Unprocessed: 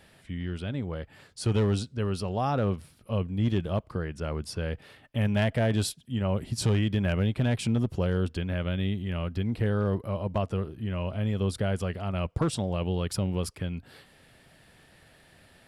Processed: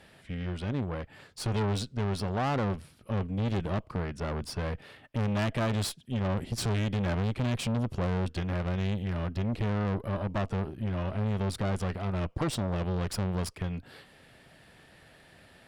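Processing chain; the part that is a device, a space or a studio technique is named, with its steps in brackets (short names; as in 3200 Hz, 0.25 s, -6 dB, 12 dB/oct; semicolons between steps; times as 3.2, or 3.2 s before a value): tube preamp driven hard (tube stage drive 31 dB, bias 0.75; low shelf 130 Hz -3.5 dB; high shelf 5800 Hz -6 dB); gain +6.5 dB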